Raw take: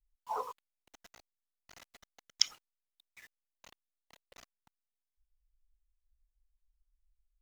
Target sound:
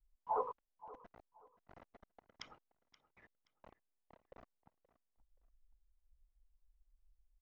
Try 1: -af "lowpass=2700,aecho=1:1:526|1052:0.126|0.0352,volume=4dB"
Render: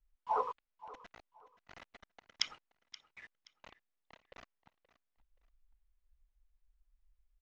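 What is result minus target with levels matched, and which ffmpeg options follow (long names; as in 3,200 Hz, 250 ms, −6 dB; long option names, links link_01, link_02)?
2,000 Hz band +8.5 dB
-af "lowpass=860,aecho=1:1:526|1052:0.126|0.0352,volume=4dB"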